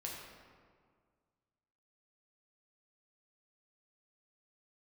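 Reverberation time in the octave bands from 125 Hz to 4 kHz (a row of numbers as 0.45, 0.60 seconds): 2.2, 2.0, 1.9, 1.8, 1.4, 1.0 seconds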